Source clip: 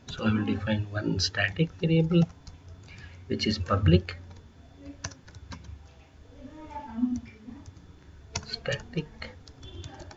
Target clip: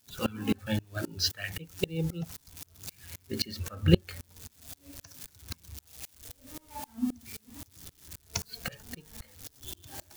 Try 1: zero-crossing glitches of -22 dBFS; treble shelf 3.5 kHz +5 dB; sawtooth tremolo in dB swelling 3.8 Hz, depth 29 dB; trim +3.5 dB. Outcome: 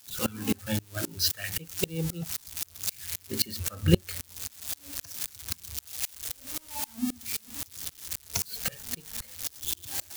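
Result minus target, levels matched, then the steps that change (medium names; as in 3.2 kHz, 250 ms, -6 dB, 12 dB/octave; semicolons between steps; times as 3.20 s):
zero-crossing glitches: distortion +12 dB
change: zero-crossing glitches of -34 dBFS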